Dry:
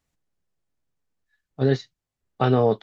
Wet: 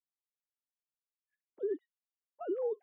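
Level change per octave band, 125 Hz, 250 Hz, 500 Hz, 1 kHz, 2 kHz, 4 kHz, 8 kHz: below −40 dB, −18.0 dB, −12.5 dB, below −20 dB, below −25 dB, below −35 dB, can't be measured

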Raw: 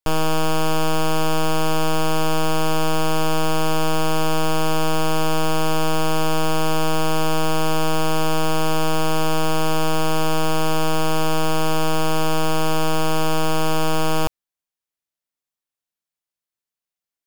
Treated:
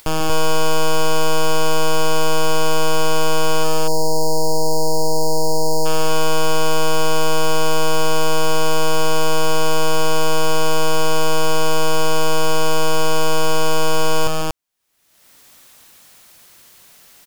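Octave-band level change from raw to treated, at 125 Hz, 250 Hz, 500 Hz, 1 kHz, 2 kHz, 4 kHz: −2.0, −2.5, +4.0, +1.5, +2.0, +3.5 decibels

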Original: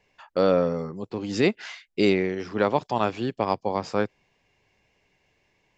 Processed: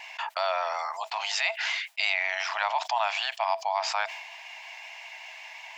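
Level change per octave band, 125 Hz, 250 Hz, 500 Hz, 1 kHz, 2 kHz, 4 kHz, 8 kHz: below −40 dB, below −40 dB, −10.5 dB, +2.0 dB, +5.5 dB, +6.5 dB, can't be measured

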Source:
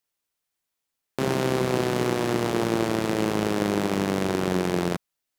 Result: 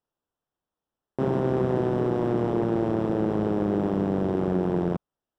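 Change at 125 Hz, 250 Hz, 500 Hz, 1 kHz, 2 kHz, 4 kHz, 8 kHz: +1.0 dB, +0.5 dB, 0.0 dB, −3.5 dB, −11.0 dB, below −15 dB, below −20 dB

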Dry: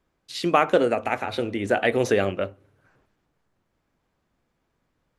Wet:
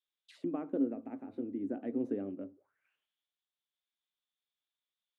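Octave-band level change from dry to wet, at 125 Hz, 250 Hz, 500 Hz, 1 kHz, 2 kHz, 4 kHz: −19.5 dB, −6.5 dB, −18.5 dB, −27.0 dB, −33.5 dB, below −30 dB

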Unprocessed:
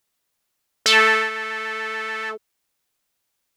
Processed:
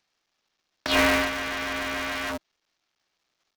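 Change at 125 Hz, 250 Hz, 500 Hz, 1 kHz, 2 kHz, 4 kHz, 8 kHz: can't be measured, +9.5 dB, −2.5 dB, −5.0 dB, −6.5 dB, −6.5 dB, −5.5 dB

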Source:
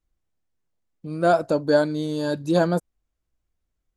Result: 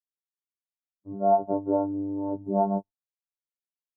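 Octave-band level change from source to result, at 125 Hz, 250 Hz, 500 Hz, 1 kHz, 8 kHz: −9.0 dB, −3.5 dB, −5.5 dB, 0.0 dB, below −35 dB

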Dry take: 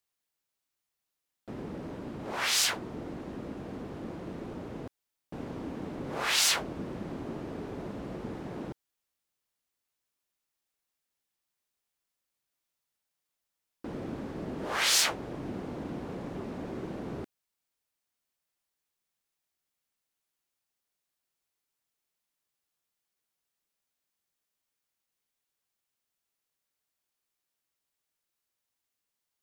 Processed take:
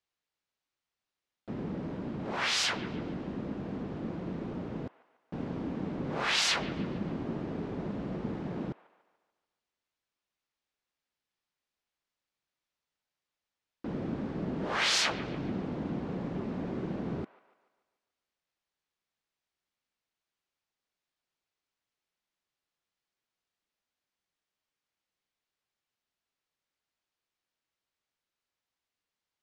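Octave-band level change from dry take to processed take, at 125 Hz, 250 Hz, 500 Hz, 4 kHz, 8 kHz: +4.0, +3.5, +0.5, −1.5, −7.0 decibels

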